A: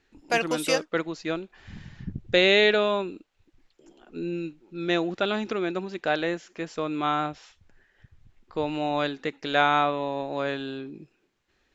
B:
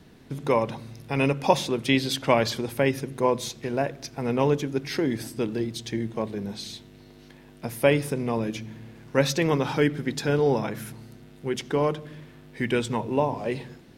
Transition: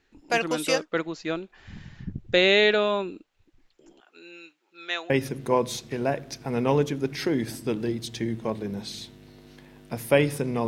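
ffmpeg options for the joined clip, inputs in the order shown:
ffmpeg -i cue0.wav -i cue1.wav -filter_complex "[0:a]asettb=1/sr,asplit=3[link_01][link_02][link_03];[link_01]atrim=end=4.004[link_04];[link_02]atrim=start=4:end=5.1,asetpts=PTS-STARTPTS,afade=type=in:duration=0.004:curve=qsin,afade=type=out:start_time=1.096:duration=0.004:curve=qsin,highpass=970[link_05];[link_03]atrim=start=5.096[link_06];[link_04][link_05]acrossfade=duration=0.004:curve1=hsin:curve2=qsin[link_07];[link_07][link_06]acrossfade=duration=0.004:curve1=qsin:curve2=hsin,apad=whole_dur=10.67,atrim=end=10.67,atrim=end=5.102[link_08];[1:a]atrim=start=2.818:end=8.39[link_09];[link_08][link_09]acrossfade=duration=0.004:curve1=hsin:curve2=hsin" out.wav

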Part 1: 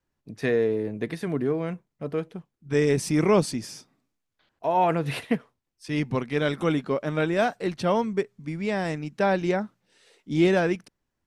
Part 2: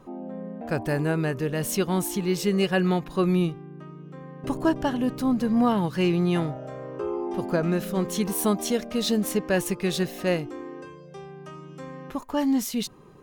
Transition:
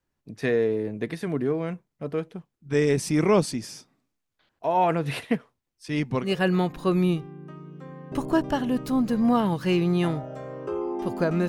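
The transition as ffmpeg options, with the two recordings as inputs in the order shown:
ffmpeg -i cue0.wav -i cue1.wav -filter_complex "[0:a]apad=whole_dur=11.48,atrim=end=11.48,atrim=end=6.34,asetpts=PTS-STARTPTS[link_01];[1:a]atrim=start=2.52:end=7.8,asetpts=PTS-STARTPTS[link_02];[link_01][link_02]acrossfade=duration=0.14:curve1=tri:curve2=tri" out.wav

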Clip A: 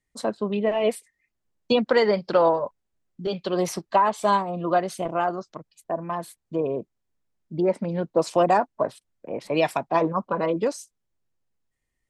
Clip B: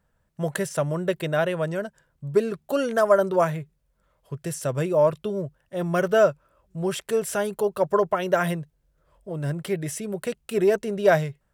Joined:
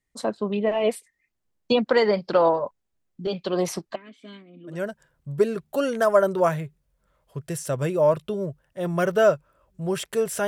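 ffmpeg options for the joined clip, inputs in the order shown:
ffmpeg -i cue0.wav -i cue1.wav -filter_complex "[0:a]asplit=3[link_01][link_02][link_03];[link_01]afade=type=out:start_time=3.94:duration=0.02[link_04];[link_02]asplit=3[link_05][link_06][link_07];[link_05]bandpass=frequency=270:width_type=q:width=8,volume=0dB[link_08];[link_06]bandpass=frequency=2290:width_type=q:width=8,volume=-6dB[link_09];[link_07]bandpass=frequency=3010:width_type=q:width=8,volume=-9dB[link_10];[link_08][link_09][link_10]amix=inputs=3:normalize=0,afade=type=in:start_time=3.94:duration=0.02,afade=type=out:start_time=4.81:duration=0.02[link_11];[link_03]afade=type=in:start_time=4.81:duration=0.02[link_12];[link_04][link_11][link_12]amix=inputs=3:normalize=0,apad=whole_dur=10.47,atrim=end=10.47,atrim=end=4.81,asetpts=PTS-STARTPTS[link_13];[1:a]atrim=start=1.63:end=7.43,asetpts=PTS-STARTPTS[link_14];[link_13][link_14]acrossfade=duration=0.14:curve1=tri:curve2=tri" out.wav

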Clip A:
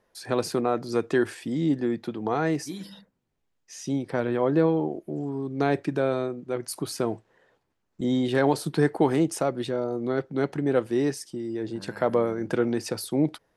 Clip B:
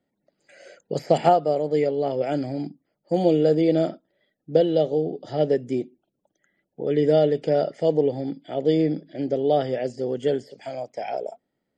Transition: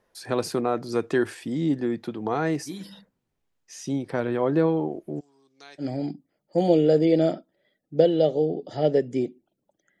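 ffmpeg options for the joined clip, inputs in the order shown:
ffmpeg -i cue0.wav -i cue1.wav -filter_complex "[0:a]asplit=3[link_01][link_02][link_03];[link_01]afade=type=out:start_time=5.19:duration=0.02[link_04];[link_02]bandpass=frequency=5600:width_type=q:width=2.1:csg=0,afade=type=in:start_time=5.19:duration=0.02,afade=type=out:start_time=5.86:duration=0.02[link_05];[link_03]afade=type=in:start_time=5.86:duration=0.02[link_06];[link_04][link_05][link_06]amix=inputs=3:normalize=0,apad=whole_dur=10,atrim=end=10,atrim=end=5.86,asetpts=PTS-STARTPTS[link_07];[1:a]atrim=start=2.34:end=6.56,asetpts=PTS-STARTPTS[link_08];[link_07][link_08]acrossfade=duration=0.08:curve1=tri:curve2=tri" out.wav

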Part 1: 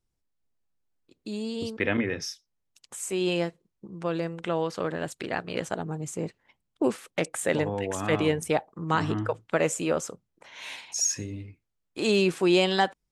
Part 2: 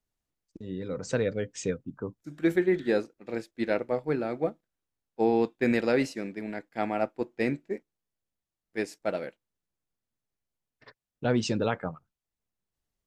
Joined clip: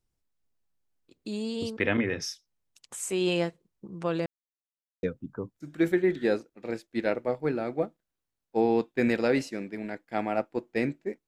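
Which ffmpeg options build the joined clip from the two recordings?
ffmpeg -i cue0.wav -i cue1.wav -filter_complex "[0:a]apad=whole_dur=11.27,atrim=end=11.27,asplit=2[link_01][link_02];[link_01]atrim=end=4.26,asetpts=PTS-STARTPTS,afade=type=out:start_time=4.256:duration=0.004:curve=hsin[link_03];[link_02]atrim=start=4.26:end=5.03,asetpts=PTS-STARTPTS,volume=0[link_04];[1:a]atrim=start=1.67:end=7.91,asetpts=PTS-STARTPTS,afade=type=in:duration=0.004:curve=hsin[link_05];[link_03][link_04][link_05]concat=n=3:v=0:a=1" out.wav

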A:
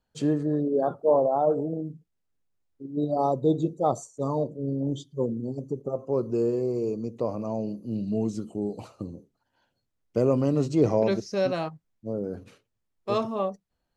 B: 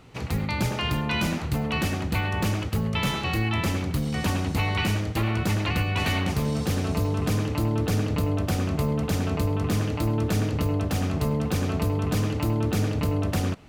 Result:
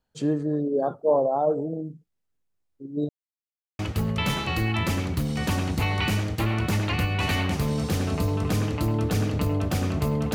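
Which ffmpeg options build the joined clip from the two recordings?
ffmpeg -i cue0.wav -i cue1.wav -filter_complex "[0:a]apad=whole_dur=10.34,atrim=end=10.34,asplit=2[link_01][link_02];[link_01]atrim=end=3.09,asetpts=PTS-STARTPTS,afade=type=out:start_time=3.086:duration=0.004:curve=hsin[link_03];[link_02]atrim=start=3.09:end=3.79,asetpts=PTS-STARTPTS,volume=0[link_04];[1:a]atrim=start=2.56:end=9.11,asetpts=PTS-STARTPTS,afade=type=in:duration=0.004:curve=hsin[link_05];[link_03][link_04][link_05]concat=n=3:v=0:a=1" out.wav

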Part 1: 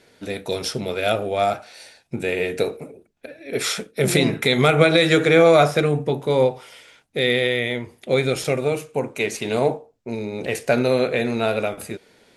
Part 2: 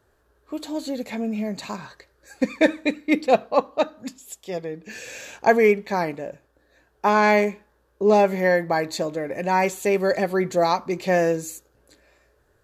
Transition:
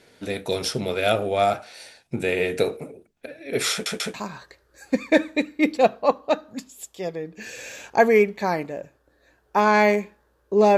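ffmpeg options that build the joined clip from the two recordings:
ffmpeg -i cue0.wav -i cue1.wav -filter_complex "[0:a]apad=whole_dur=10.77,atrim=end=10.77,asplit=3[link_01][link_02][link_03];[link_01]atrim=end=3.862[link_04];[link_02]atrim=start=3.718:end=3.862[link_05];[link_03]atrim=start=3.718:end=3.862[link_06];[1:a]atrim=start=1.628:end=8.26[link_07];[link_04][link_05]acrossfade=duration=0.004:curve1=hsin:curve2=hsin[link_08];[link_08][link_06]acrossfade=duration=0.004:curve1=hsin:curve2=hsin[link_09];[link_09][link_07]acrossfade=duration=0.004:curve1=hsin:curve2=hsin" out.wav

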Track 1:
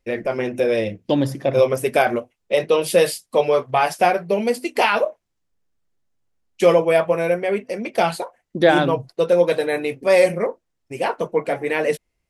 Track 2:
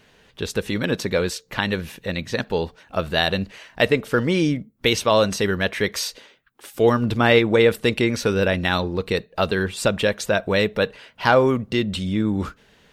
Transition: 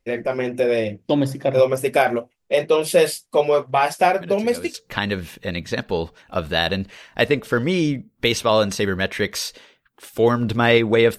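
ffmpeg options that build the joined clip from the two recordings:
ffmpeg -i cue0.wav -i cue1.wav -filter_complex "[1:a]asplit=2[link_01][link_02];[0:a]apad=whole_dur=11.18,atrim=end=11.18,atrim=end=4.742[link_03];[link_02]atrim=start=1.348:end=7.79[link_04];[link_01]atrim=start=0.82:end=1.35,asetpts=PTS-STARTPTS,volume=-14dB,afade=type=in:duration=0.004:curve=hsin,afade=type=out:start_time=0.526:duration=0.004:curve=hsin,adelay=185661S[link_05];[link_03][link_04]acrossfade=duration=0.004:curve1=hsin:curve2=hsin[link_06];[link_06][link_05]amix=inputs=2:normalize=0" out.wav

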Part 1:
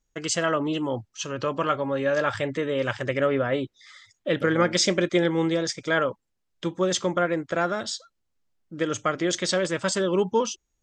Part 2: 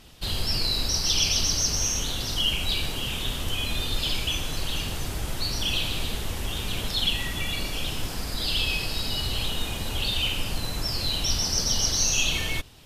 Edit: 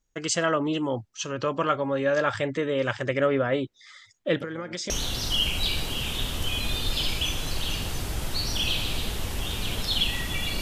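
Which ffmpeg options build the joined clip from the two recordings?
ffmpeg -i cue0.wav -i cue1.wav -filter_complex "[0:a]asettb=1/sr,asplit=3[link_01][link_02][link_03];[link_01]atrim=end=4.364[link_04];[link_02]atrim=start=4.36:end=4.9,asetpts=PTS-STARTPTS,afade=type=in:duration=0.004:curve=qsin,afade=type=out:start_time=0.536:duration=0.004:curve=qsin,acompressor=threshold=-29dB:ratio=12:attack=3.2:release=140:knee=1:detection=peak[link_05];[link_03]atrim=start=4.896[link_06];[link_04][link_05]acrossfade=duration=0.004:curve1=hsin:curve2=qsin[link_07];[link_07][link_06]acrossfade=duration=0.004:curve1=qsin:curve2=hsin,apad=whole_dur=10.61,atrim=end=10.61,atrim=end=4.902[link_08];[1:a]atrim=start=1.958:end=7.67[link_09];[link_08][link_09]acrossfade=duration=0.004:curve1=hsin:curve2=hsin" out.wav

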